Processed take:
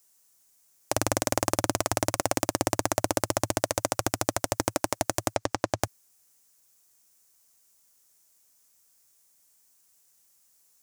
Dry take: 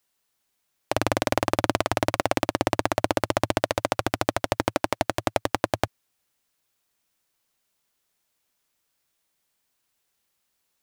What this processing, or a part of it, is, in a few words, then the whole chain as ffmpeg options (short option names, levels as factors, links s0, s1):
over-bright horn tweeter: -filter_complex "[0:a]highshelf=f=4800:t=q:w=1.5:g=9.5,alimiter=limit=0.668:level=0:latency=1:release=32,asettb=1/sr,asplit=3[s0][s1][s2];[s0]atrim=end=5.284[s3];[s1]atrim=start=5.28:end=5.83,asetpts=PTS-STARTPTS,afade=t=in:d=0.004:c=qsin,afade=t=out:st=0.546:d=0.004:c=qsin,acrossover=split=6700[s4][s5];[s5]acompressor=threshold=0.00282:ratio=4:attack=1:release=60[s6];[s4][s6]amix=inputs=2:normalize=0[s7];[s2]atrim=start=5.826[s8];[s3][s7]acrossfade=d=0.004:c1=hsin:c2=qsin[s9];[s9][s8]acrossfade=d=0.004:c1=qsin:c2=hsin,volume=1.26"